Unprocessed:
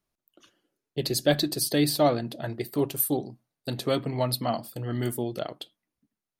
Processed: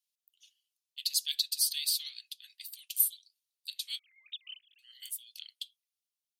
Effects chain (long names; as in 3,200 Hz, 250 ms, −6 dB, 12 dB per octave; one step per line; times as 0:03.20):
0:03.99–0:04.79: three sine waves on the formant tracks
Butterworth high-pass 2,800 Hz 36 dB per octave